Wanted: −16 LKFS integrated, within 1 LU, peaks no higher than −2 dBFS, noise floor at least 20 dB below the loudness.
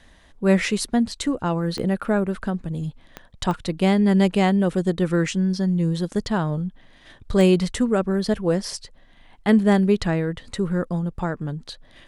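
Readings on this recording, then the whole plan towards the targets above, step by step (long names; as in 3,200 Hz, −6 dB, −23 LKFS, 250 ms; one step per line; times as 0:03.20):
number of clicks 4; integrated loudness −22.0 LKFS; sample peak −4.5 dBFS; target loudness −16.0 LKFS
→ click removal
level +6 dB
brickwall limiter −2 dBFS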